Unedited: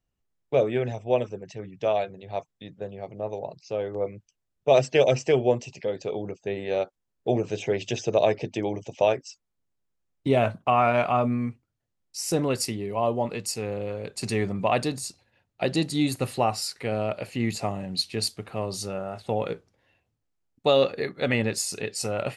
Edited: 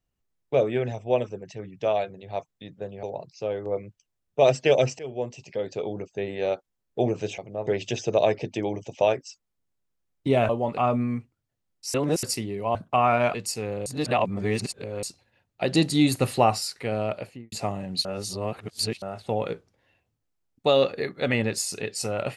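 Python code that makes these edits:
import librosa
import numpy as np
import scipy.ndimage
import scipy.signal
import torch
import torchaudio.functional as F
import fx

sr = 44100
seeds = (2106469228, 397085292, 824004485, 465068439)

y = fx.studio_fade_out(x, sr, start_s=17.12, length_s=0.4)
y = fx.edit(y, sr, fx.move(start_s=3.03, length_s=0.29, to_s=7.67),
    fx.fade_in_from(start_s=5.28, length_s=0.68, floor_db=-19.0),
    fx.swap(start_s=10.49, length_s=0.59, other_s=13.06, other_length_s=0.28),
    fx.reverse_span(start_s=12.25, length_s=0.29),
    fx.reverse_span(start_s=13.86, length_s=1.17),
    fx.clip_gain(start_s=15.73, length_s=0.85, db=4.0),
    fx.reverse_span(start_s=18.05, length_s=0.97), tone=tone)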